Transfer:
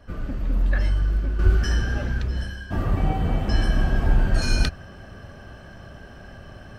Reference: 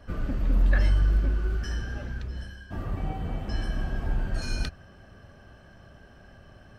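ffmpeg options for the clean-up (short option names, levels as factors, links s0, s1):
-filter_complex "[0:a]asplit=3[s0][s1][s2];[s0]afade=t=out:st=1.43:d=0.02[s3];[s1]highpass=f=140:w=0.5412,highpass=f=140:w=1.3066,afade=t=in:st=1.43:d=0.02,afade=t=out:st=1.55:d=0.02[s4];[s2]afade=t=in:st=1.55:d=0.02[s5];[s3][s4][s5]amix=inputs=3:normalize=0,asetnsamples=n=441:p=0,asendcmd='1.39 volume volume -9dB',volume=1"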